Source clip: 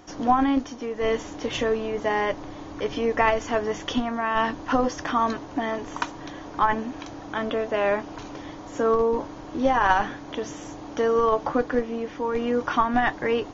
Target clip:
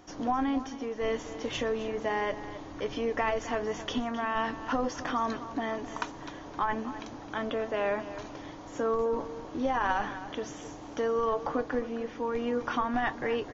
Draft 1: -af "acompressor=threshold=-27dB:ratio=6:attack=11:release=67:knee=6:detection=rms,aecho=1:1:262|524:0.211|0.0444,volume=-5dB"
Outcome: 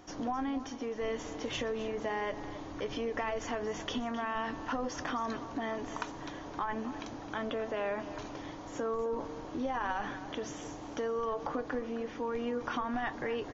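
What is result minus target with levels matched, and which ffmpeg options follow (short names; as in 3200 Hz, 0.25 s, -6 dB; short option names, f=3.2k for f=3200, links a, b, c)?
compressor: peak gain reduction +6.5 dB
-af "acompressor=threshold=-19dB:ratio=6:attack=11:release=67:knee=6:detection=rms,aecho=1:1:262|524:0.211|0.0444,volume=-5dB"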